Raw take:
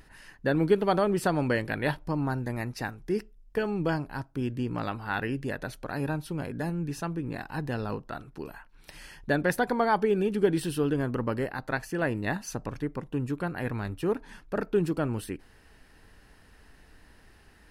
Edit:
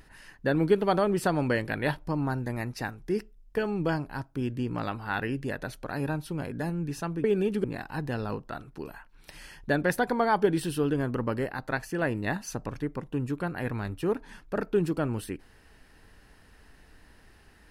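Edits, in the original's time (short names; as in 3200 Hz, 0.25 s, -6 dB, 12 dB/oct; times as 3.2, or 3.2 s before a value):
10.04–10.44 move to 7.24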